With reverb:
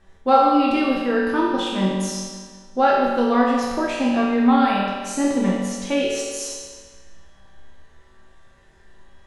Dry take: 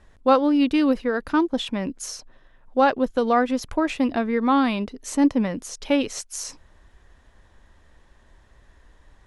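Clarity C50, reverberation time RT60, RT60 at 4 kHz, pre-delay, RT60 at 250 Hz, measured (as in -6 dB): -1.0 dB, 1.6 s, 1.4 s, 5 ms, 1.6 s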